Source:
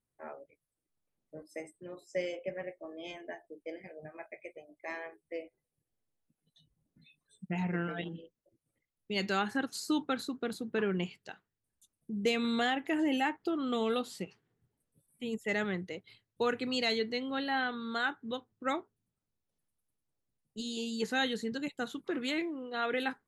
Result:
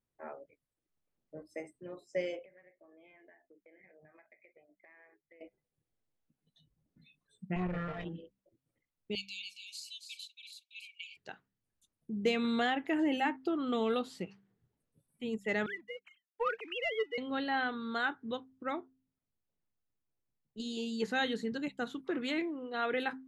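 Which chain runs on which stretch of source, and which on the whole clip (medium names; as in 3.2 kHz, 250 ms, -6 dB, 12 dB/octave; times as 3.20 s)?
2.45–5.41 s: four-pole ladder low-pass 2.3 kHz, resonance 60% + compression 10:1, threshold -56 dBFS
7.56–8.05 s: comb filter that takes the minimum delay 1.6 ms + tone controls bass +3 dB, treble -14 dB
9.15–11.17 s: brick-wall FIR high-pass 2.2 kHz + delay 279 ms -6.5 dB
15.66–17.18 s: formants replaced by sine waves + high-pass 710 Hz + waveshaping leveller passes 1
18.63–20.60 s: distance through air 130 m + feedback comb 350 Hz, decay 0.18 s, mix 30%
whole clip: low-pass 3.6 kHz 6 dB/octave; de-hum 65.54 Hz, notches 4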